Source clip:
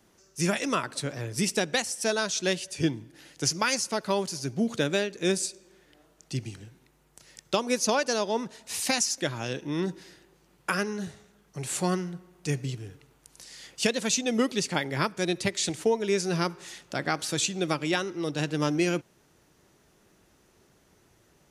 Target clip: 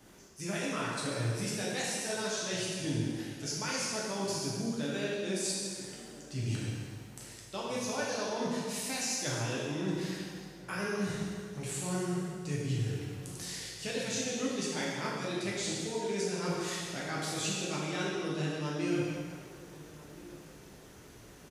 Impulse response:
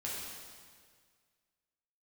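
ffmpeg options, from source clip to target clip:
-filter_complex "[0:a]areverse,acompressor=threshold=-40dB:ratio=8,areverse,asplit=2[a][b];[b]adelay=1341,volume=-18dB,highshelf=f=4k:g=-30.2[c];[a][c]amix=inputs=2:normalize=0[d];[1:a]atrim=start_sample=2205[e];[d][e]afir=irnorm=-1:irlink=0,volume=7dB"

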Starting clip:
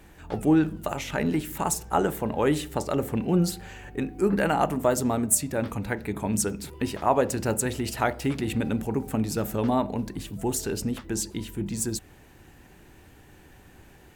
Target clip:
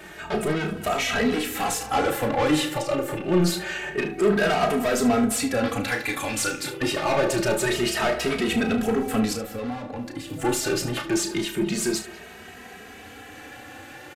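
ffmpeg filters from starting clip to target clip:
-filter_complex "[0:a]asettb=1/sr,asplit=3[a][b][c];[a]atrim=end=2.754[d];[b]atrim=start=2.75:end=3.32,asetpts=PTS-STARTPTS,afade=t=in:d=0.004:c=qsin,afade=t=out:st=0.566:d=0.004:c=qsin,acompressor=threshold=-30dB:ratio=6[e];[c]atrim=start=3.316[f];[d][e]acrossfade=d=0.004:c1=hsin:c2=qsin[g];[g][f]acrossfade=d=0.004:c1=qsin:c2=hsin,asettb=1/sr,asplit=3[h][i][j];[h]atrim=end=5.844[k];[i]atrim=start=5.84:end=6.6,asetpts=PTS-STARTPTS,afade=t=in:d=0.004:c=qsin,afade=t=out:st=0.756:d=0.004:c=qsin,tiltshelf=f=1.3k:g=-7.5[l];[j]atrim=start=6.596[m];[k][l]acrossfade=d=0.004:c1=hsin:c2=qsin[n];[n][m]acrossfade=d=0.004:c1=qsin:c2=hsin,asplit=2[o][p];[p]highpass=f=720:p=1,volume=30dB,asoftclip=type=tanh:threshold=-6.5dB[q];[o][q]amix=inputs=2:normalize=0,lowpass=f=3.7k:p=1,volume=-6dB,asettb=1/sr,asplit=3[r][s][t];[r]atrim=end=9.334[u];[s]atrim=start=9.33:end=10.3,asetpts=PTS-STARTPTS,afade=t=in:d=0.004:c=qsin,afade=t=out:st=0.966:d=0.004:c=qsin,acrossover=split=180|890[v][w][x];[v]acompressor=threshold=-33dB:ratio=4[y];[w]acompressor=threshold=-27dB:ratio=4[z];[x]acompressor=threshold=-35dB:ratio=4[aa];[y][z][aa]amix=inputs=3:normalize=0[ab];[t]atrim=start=10.296[ac];[u][ab]acrossfade=d=0.004:c1=hsin:c2=qsin[ad];[ad][ac]acrossfade=d=0.004:c1=qsin:c2=hsin,asplit=2[ae][af];[af]aecho=0:1:33|74:0.398|0.2[ag];[ae][ag]amix=inputs=2:normalize=0,aresample=32000,aresample=44100,bandreject=f=960:w=6.4,asplit=2[ah][ai];[ai]adelay=200,highpass=300,lowpass=3.4k,asoftclip=type=hard:threshold=-12dB,volume=-15dB[aj];[ah][aj]amix=inputs=2:normalize=0,asplit=2[ak][al];[al]adelay=2.8,afreqshift=0.26[am];[ak][am]amix=inputs=2:normalize=1,volume=-4.5dB"

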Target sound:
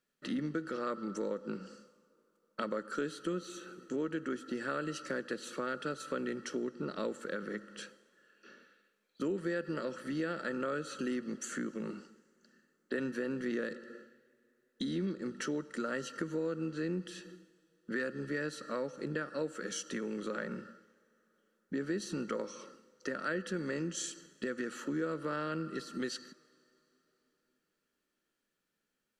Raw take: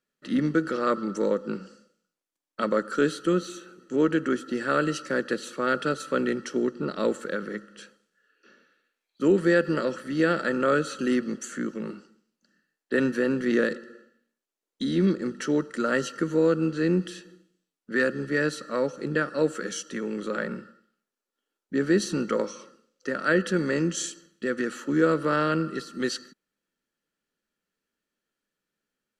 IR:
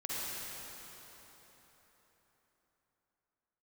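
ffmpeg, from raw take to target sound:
-filter_complex "[0:a]acompressor=threshold=-37dB:ratio=3,asplit=2[a][b];[1:a]atrim=start_sample=2205,lowshelf=f=380:g=-7.5[c];[b][c]afir=irnorm=-1:irlink=0,volume=-26.5dB[d];[a][d]amix=inputs=2:normalize=0"

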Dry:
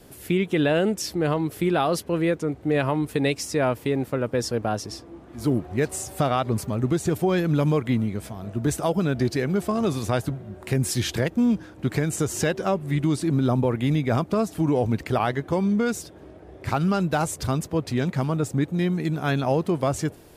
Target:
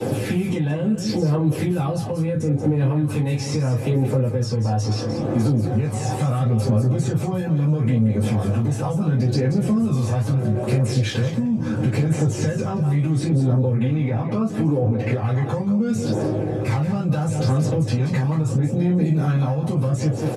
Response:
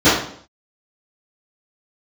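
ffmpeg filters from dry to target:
-filter_complex "[0:a]asettb=1/sr,asplit=3[a][b][c];[a]atrim=end=13.764[d];[b]atrim=start=13.76:end=15.22,asetpts=PTS-STARTPTS,afade=t=in:d=0.004:c=qsin,afade=t=out:st=1.456:d=0.004:c=qsin,bass=f=250:g=-8,treble=f=4k:g=-14[e];[c]atrim=start=15.216[f];[d][e]acrossfade=d=0.004:c1=hsin:c2=qsin[g];[g][f]acrossfade=d=0.004:c1=qsin:c2=hsin,acrossover=split=180[h][i];[i]acompressor=threshold=-33dB:ratio=6[j];[h][j]amix=inputs=2:normalize=0,asoftclip=type=tanh:threshold=-21.5dB,alimiter=level_in=9.5dB:limit=-24dB:level=0:latency=1:release=37,volume=-9.5dB,aecho=1:1:178:0.282[k];[1:a]atrim=start_sample=2205,afade=t=out:st=0.17:d=0.01,atrim=end_sample=7938,asetrate=74970,aresample=44100[l];[k][l]afir=irnorm=-1:irlink=0,acrossover=split=200|5500[m][n][o];[m]acompressor=threshold=-24dB:ratio=4[p];[n]acompressor=threshold=-26dB:ratio=4[q];[o]acompressor=threshold=-41dB:ratio=4[r];[p][q][r]amix=inputs=3:normalize=0,highshelf=f=11k:g=-7.5,aphaser=in_gain=1:out_gain=1:delay=1.2:decay=0.31:speed=0.74:type=triangular"

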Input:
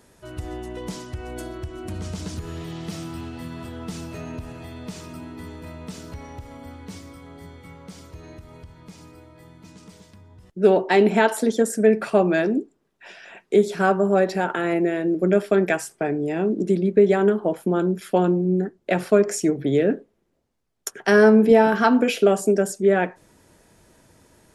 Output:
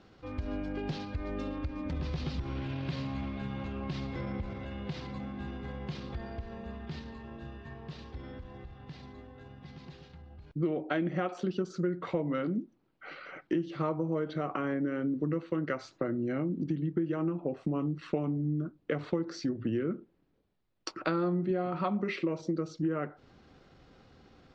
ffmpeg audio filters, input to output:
-af "lowpass=f=5.4k:w=0.5412,lowpass=f=5.4k:w=1.3066,acompressor=threshold=-27dB:ratio=5,asetrate=36028,aresample=44100,atempo=1.22405,volume=-2dB"

